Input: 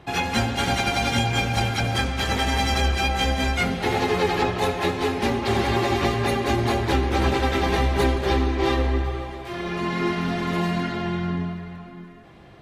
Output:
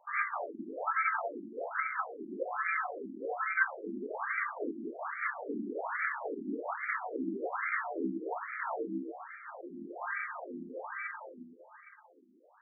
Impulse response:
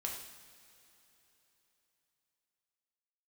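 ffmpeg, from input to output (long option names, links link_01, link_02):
-af "lowpass=frequency=3100:width_type=q:width=0.5098,lowpass=frequency=3100:width_type=q:width=0.6013,lowpass=frequency=3100:width_type=q:width=0.9,lowpass=frequency=3100:width_type=q:width=2.563,afreqshift=-3700,aeval=exprs='max(val(0),0)':channel_layout=same,afftfilt=real='re*between(b*sr/1024,260*pow(1700/260,0.5+0.5*sin(2*PI*1.2*pts/sr))/1.41,260*pow(1700/260,0.5+0.5*sin(2*PI*1.2*pts/sr))*1.41)':imag='im*between(b*sr/1024,260*pow(1700/260,0.5+0.5*sin(2*PI*1.2*pts/sr))/1.41,260*pow(1700/260,0.5+0.5*sin(2*PI*1.2*pts/sr))*1.41)':win_size=1024:overlap=0.75,volume=4.5dB"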